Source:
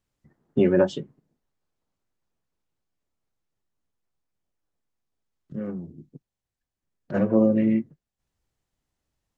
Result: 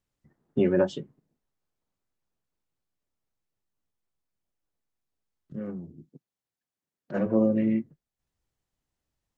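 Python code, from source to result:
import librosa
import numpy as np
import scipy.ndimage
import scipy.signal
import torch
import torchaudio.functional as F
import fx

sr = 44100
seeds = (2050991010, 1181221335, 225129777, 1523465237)

y = fx.highpass(x, sr, hz=160.0, slope=12, at=(6.05, 7.26))
y = F.gain(torch.from_numpy(y), -3.5).numpy()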